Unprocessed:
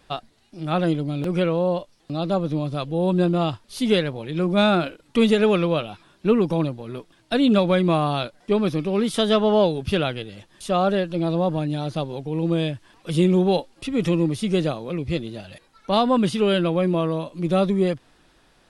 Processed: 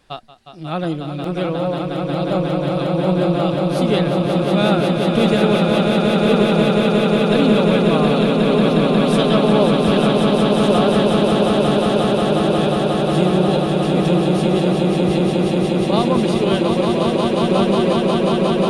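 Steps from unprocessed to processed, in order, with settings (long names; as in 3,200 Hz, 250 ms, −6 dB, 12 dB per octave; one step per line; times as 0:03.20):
echo that builds up and dies away 180 ms, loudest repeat 8, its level −5 dB
level −1 dB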